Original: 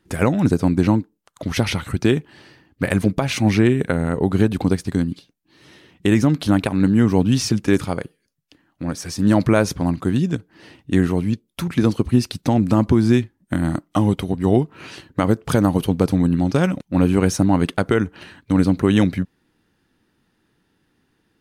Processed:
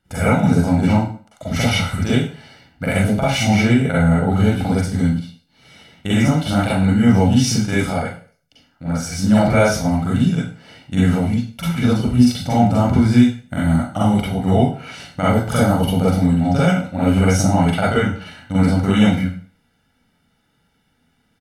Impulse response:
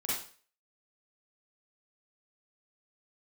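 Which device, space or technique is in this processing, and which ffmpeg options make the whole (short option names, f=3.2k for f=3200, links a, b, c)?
microphone above a desk: -filter_complex "[0:a]aecho=1:1:1.4:0.76[a];[1:a]atrim=start_sample=2205[b];[a][b]afir=irnorm=-1:irlink=0,volume=-3dB"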